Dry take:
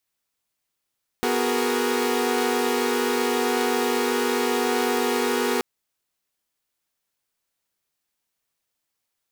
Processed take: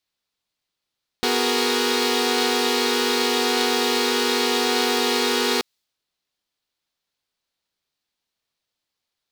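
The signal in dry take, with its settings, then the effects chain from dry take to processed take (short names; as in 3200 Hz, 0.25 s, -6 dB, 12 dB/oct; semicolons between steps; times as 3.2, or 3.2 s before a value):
chord B3/F#4/G#4/A#4 saw, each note -24 dBFS 4.38 s
bell 4100 Hz +11.5 dB 1.2 oct; mismatched tape noise reduction decoder only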